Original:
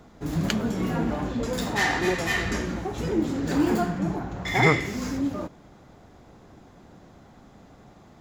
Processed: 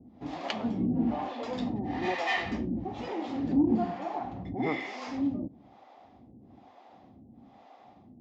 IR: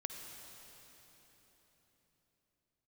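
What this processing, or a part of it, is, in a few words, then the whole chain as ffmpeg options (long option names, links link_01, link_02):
guitar amplifier with harmonic tremolo: -filter_complex "[0:a]asettb=1/sr,asplit=3[link_01][link_02][link_03];[link_01]atrim=end=4.544[link_04];[link_02]atrim=start=4.54:end=5.07,asetpts=PTS-STARTPTS,afade=type=in:duration=0.004:curve=qsin,afade=type=out:start_time=0.526:duration=0.004:curve=qsin,highpass=270[link_05];[link_03]atrim=start=5.066[link_06];[link_04][link_05]acrossfade=duration=0.004:curve1=hsin:curve2=qsin[link_07];[link_07][link_06]acrossfade=duration=0.004:curve1=qsin:curve2=hsin,acrossover=split=420[link_08][link_09];[link_08]aeval=exprs='val(0)*(1-1/2+1/2*cos(2*PI*1.1*n/s))':channel_layout=same[link_10];[link_09]aeval=exprs='val(0)*(1-1/2-1/2*cos(2*PI*1.1*n/s))':channel_layout=same[link_11];[link_10][link_11]amix=inputs=2:normalize=0,asoftclip=type=tanh:threshold=-16dB,highpass=87,equalizer=frequency=160:width_type=q:width=4:gain=-6,equalizer=frequency=250:width_type=q:width=4:gain=7,equalizer=frequency=430:width_type=q:width=4:gain=-5,equalizer=frequency=770:width_type=q:width=4:gain=8,equalizer=frequency=1500:width_type=q:width=4:gain=-10,equalizer=frequency=4100:width_type=q:width=4:gain=-3,lowpass=frequency=4500:width=0.5412,lowpass=frequency=4500:width=1.3066"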